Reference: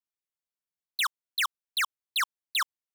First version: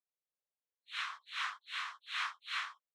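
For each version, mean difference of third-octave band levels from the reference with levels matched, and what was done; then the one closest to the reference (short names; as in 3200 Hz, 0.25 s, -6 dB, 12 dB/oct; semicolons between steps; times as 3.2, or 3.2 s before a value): 11.0 dB: phase scrambler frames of 0.2 s; ladder high-pass 440 Hz, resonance 60%; air absorption 120 m; noise-modulated level, depth 65%; gain +7.5 dB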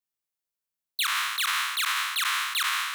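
8.0 dB: spectral trails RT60 1.28 s; high shelf 8600 Hz +6 dB; limiter -15.5 dBFS, peak gain reduction 9.5 dB; gain -1.5 dB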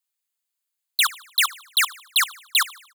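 4.0 dB: HPF 620 Hz; high shelf 2700 Hz +10.5 dB; notch 5600 Hz, Q 6.4; feedback echo 76 ms, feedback 50%, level -20 dB; gain +3 dB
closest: third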